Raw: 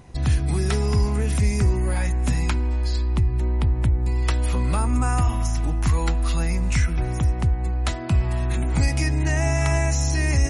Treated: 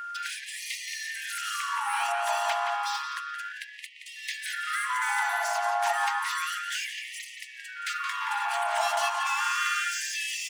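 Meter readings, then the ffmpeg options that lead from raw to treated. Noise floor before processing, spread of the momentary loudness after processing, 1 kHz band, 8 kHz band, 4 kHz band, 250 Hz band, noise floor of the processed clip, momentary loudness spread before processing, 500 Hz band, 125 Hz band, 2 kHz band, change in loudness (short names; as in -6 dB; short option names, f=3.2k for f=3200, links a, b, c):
-26 dBFS, 12 LU, +5.5 dB, -2.5 dB, +2.5 dB, under -40 dB, -45 dBFS, 3 LU, -7.0 dB, under -40 dB, +3.5 dB, -6.5 dB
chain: -filter_complex "[0:a]aemphasis=mode=production:type=cd,asplit=2[a][b];[b]highpass=f=720:p=1,volume=23dB,asoftclip=type=tanh:threshold=-8dB[c];[a][c]amix=inputs=2:normalize=0,lowpass=f=1.5k:p=1,volume=-6dB,asplit=2[d][e];[e]acrusher=bits=4:mix=0:aa=0.5,volume=-8dB[f];[d][f]amix=inputs=2:normalize=0,aeval=exprs='val(0)*sin(2*PI*760*n/s)':c=same,aeval=exprs='val(0)+0.0447*sin(2*PI*1400*n/s)':c=same,asplit=2[g][h];[h]adelay=173,lowpass=f=3.2k:p=1,volume=-4dB,asplit=2[i][j];[j]adelay=173,lowpass=f=3.2k:p=1,volume=0.53,asplit=2[k][l];[l]adelay=173,lowpass=f=3.2k:p=1,volume=0.53,asplit=2[m][n];[n]adelay=173,lowpass=f=3.2k:p=1,volume=0.53,asplit=2[o][p];[p]adelay=173,lowpass=f=3.2k:p=1,volume=0.53,asplit=2[q][r];[r]adelay=173,lowpass=f=3.2k:p=1,volume=0.53,asplit=2[s][t];[t]adelay=173,lowpass=f=3.2k:p=1,volume=0.53[u];[i][k][m][o][q][s][u]amix=inputs=7:normalize=0[v];[g][v]amix=inputs=2:normalize=0,afftfilt=real='re*gte(b*sr/1024,620*pow(1800/620,0.5+0.5*sin(2*PI*0.31*pts/sr)))':imag='im*gte(b*sr/1024,620*pow(1800/620,0.5+0.5*sin(2*PI*0.31*pts/sr)))':win_size=1024:overlap=0.75,volume=-7.5dB"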